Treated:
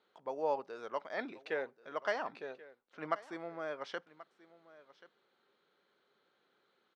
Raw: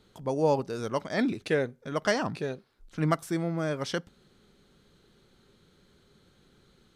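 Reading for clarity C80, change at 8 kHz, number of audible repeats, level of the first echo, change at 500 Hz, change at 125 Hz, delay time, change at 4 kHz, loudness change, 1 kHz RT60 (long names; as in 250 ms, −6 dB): no reverb audible, below −20 dB, 1, −19.0 dB, −9.0 dB, −28.0 dB, 1,083 ms, −12.5 dB, −10.0 dB, no reverb audible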